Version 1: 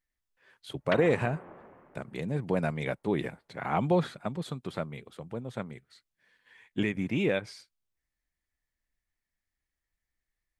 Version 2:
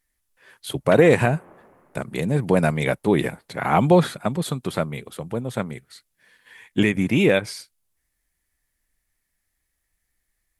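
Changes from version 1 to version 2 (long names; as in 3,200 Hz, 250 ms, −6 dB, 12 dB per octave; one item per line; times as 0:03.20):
speech +10.0 dB
master: add parametric band 11,000 Hz +12 dB 0.86 octaves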